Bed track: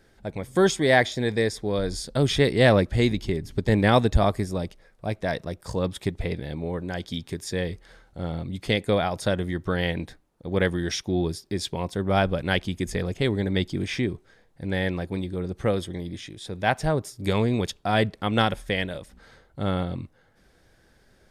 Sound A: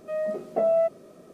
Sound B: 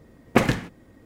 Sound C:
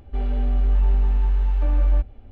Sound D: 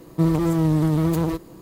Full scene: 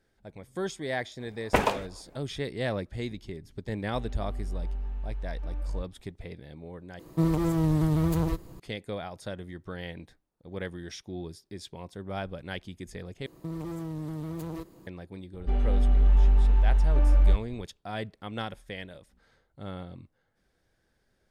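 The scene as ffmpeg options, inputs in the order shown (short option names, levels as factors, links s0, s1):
-filter_complex "[3:a]asplit=2[s0][s1];[4:a]asplit=2[s2][s3];[0:a]volume=0.224[s4];[2:a]aeval=exprs='val(0)*sin(2*PI*510*n/s+510*0.55/3.9*sin(2*PI*3.9*n/s))':c=same[s5];[s2]asubboost=boost=9:cutoff=110[s6];[s3]acompressor=threshold=0.0794:ratio=6:attack=3.2:release=140:knee=1:detection=peak[s7];[s4]asplit=3[s8][s9][s10];[s8]atrim=end=6.994[s11];[s6]atrim=end=1.61,asetpts=PTS-STARTPTS,volume=0.562[s12];[s9]atrim=start=8.596:end=13.264[s13];[s7]atrim=end=1.61,asetpts=PTS-STARTPTS,volume=0.316[s14];[s10]atrim=start=14.866[s15];[s5]atrim=end=1.05,asetpts=PTS-STARTPTS,volume=0.891,afade=t=in:d=0.05,afade=t=out:st=1:d=0.05,adelay=1180[s16];[s0]atrim=end=2.31,asetpts=PTS-STARTPTS,volume=0.178,afade=t=in:d=0.004:c=hsin,afade=t=out:st=2.306:d=0.004:c=hsin,adelay=168021S[s17];[s1]atrim=end=2.31,asetpts=PTS-STARTPTS,volume=0.841,afade=t=in:d=0.004:c=hsin,afade=t=out:st=2.306:d=0.004:c=hsin,adelay=15340[s18];[s11][s12]acrossfade=d=0.004:c1=hsin:c2=hsin[s19];[s19][s13]acrossfade=d=0.004:c1=hsin:c2=hsin[s20];[s20][s14]acrossfade=d=0.004:c1=hsin:c2=hsin[s21];[s21][s15]acrossfade=d=0.004:c1=hsin:c2=hsin[s22];[s22][s16][s17][s18]amix=inputs=4:normalize=0"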